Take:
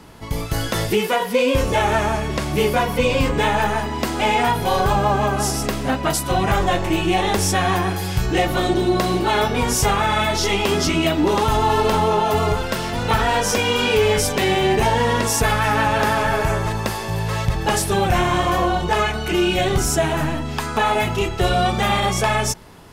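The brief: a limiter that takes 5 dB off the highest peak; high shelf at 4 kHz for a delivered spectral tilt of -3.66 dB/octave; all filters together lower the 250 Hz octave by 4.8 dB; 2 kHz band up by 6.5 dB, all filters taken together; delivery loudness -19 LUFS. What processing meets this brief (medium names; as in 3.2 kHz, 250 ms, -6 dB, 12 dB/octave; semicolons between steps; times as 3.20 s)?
peaking EQ 250 Hz -7.5 dB; peaking EQ 2 kHz +9 dB; treble shelf 4 kHz -3.5 dB; peak limiter -9 dBFS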